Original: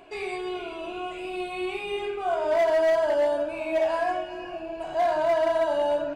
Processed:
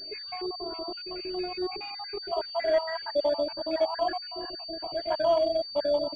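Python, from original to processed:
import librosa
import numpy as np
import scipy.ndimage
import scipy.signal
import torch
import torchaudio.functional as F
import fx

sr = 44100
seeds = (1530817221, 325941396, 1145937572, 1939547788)

y = fx.spec_dropout(x, sr, seeds[0], share_pct=60)
y = fx.pwm(y, sr, carrier_hz=4600.0)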